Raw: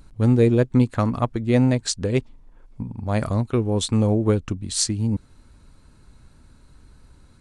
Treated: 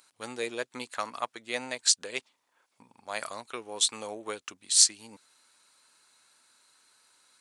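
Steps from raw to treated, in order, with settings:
high-pass filter 740 Hz 12 dB per octave
high-shelf EQ 2,100 Hz +11.5 dB
level −7 dB

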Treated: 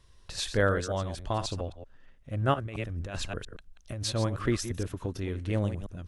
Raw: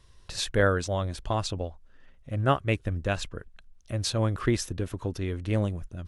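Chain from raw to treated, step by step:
delay that plays each chunk backwards 115 ms, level −10 dB
0:02.54–0:04.04: compressor whose output falls as the input rises −32 dBFS, ratio −1
level −2.5 dB

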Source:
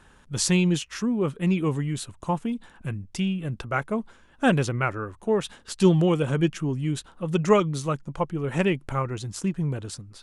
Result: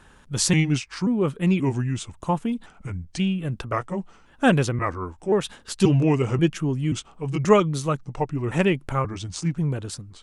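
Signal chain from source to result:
pitch shifter gated in a rhythm −2.5 semitones, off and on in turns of 532 ms
level +2.5 dB

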